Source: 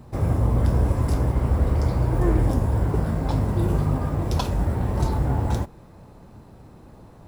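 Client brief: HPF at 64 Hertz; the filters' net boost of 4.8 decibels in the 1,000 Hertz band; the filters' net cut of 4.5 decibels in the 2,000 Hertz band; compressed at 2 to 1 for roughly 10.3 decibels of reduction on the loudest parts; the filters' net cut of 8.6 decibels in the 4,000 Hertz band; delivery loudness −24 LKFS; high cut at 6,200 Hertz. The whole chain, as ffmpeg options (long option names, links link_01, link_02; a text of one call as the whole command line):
ffmpeg -i in.wav -af "highpass=64,lowpass=6200,equalizer=frequency=1000:width_type=o:gain=8,equalizer=frequency=2000:width_type=o:gain=-8.5,equalizer=frequency=4000:width_type=o:gain=-8,acompressor=threshold=-37dB:ratio=2,volume=9.5dB" out.wav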